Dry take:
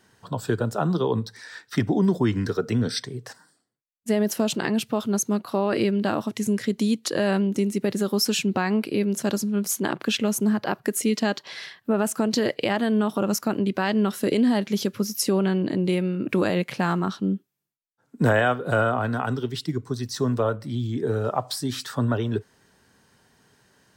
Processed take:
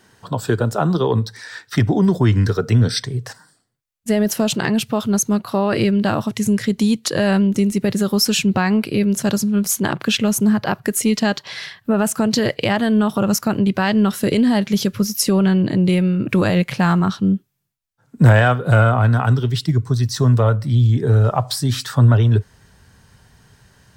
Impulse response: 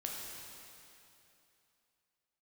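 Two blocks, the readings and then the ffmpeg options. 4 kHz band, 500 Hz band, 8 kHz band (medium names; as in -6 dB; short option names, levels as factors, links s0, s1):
+6.5 dB, +3.5 dB, +6.5 dB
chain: -af "asubboost=boost=6.5:cutoff=110,acontrast=69"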